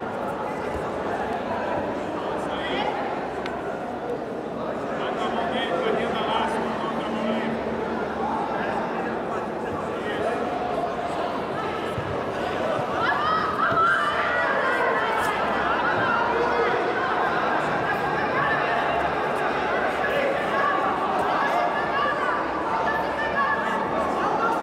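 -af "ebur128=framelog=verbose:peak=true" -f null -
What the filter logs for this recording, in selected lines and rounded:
Integrated loudness:
  I:         -24.5 LUFS
  Threshold: -34.5 LUFS
Loudness range:
  LRA:         5.5 LU
  Threshold: -44.4 LUFS
  LRA low:   -27.5 LUFS
  LRA high:  -22.1 LUFS
True peak:
  Peak:      -12.0 dBFS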